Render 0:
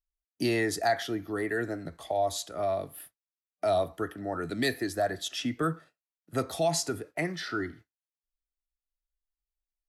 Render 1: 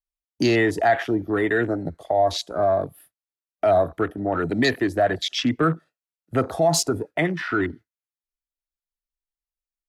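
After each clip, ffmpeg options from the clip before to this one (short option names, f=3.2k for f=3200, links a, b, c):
-filter_complex "[0:a]afwtdn=0.0112,asplit=2[a][b];[b]alimiter=level_in=1dB:limit=-24dB:level=0:latency=1,volume=-1dB,volume=-1dB[c];[a][c]amix=inputs=2:normalize=0,volume=5dB"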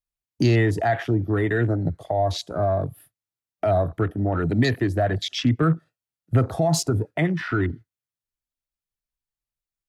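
-filter_complex "[0:a]asplit=2[a][b];[b]acompressor=threshold=-28dB:ratio=6,volume=-1dB[c];[a][c]amix=inputs=2:normalize=0,equalizer=f=110:t=o:w=1.4:g=14.5,volume=-6dB"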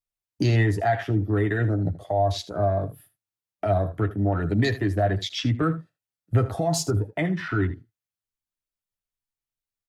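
-af "aecho=1:1:10|79:0.473|0.178,volume=-3dB"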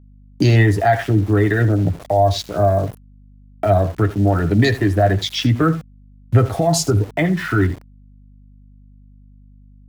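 -af "aeval=exprs='val(0)*gte(abs(val(0)),0.00891)':c=same,aeval=exprs='val(0)+0.00251*(sin(2*PI*50*n/s)+sin(2*PI*2*50*n/s)/2+sin(2*PI*3*50*n/s)/3+sin(2*PI*4*50*n/s)/4+sin(2*PI*5*50*n/s)/5)':c=same,volume=7.5dB"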